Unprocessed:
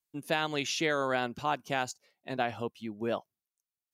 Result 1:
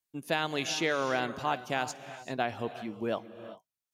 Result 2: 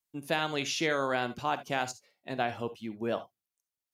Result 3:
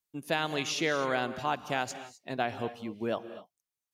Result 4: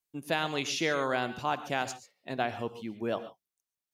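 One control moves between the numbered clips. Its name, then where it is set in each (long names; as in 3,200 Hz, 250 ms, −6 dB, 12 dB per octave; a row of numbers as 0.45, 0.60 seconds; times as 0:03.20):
reverb whose tail is shaped and stops, gate: 420, 90, 280, 160 milliseconds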